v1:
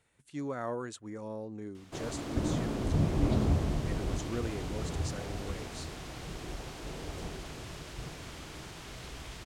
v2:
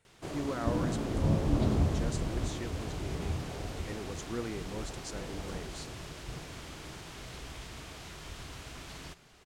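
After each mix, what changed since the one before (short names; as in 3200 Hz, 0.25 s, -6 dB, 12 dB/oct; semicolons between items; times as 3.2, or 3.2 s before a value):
background: entry -1.70 s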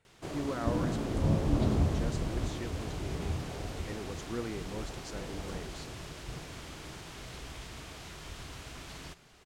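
speech: add high shelf 7200 Hz -11.5 dB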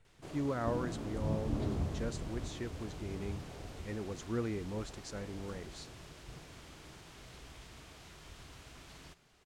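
speech: remove HPF 180 Hz 6 dB/oct; background -8.0 dB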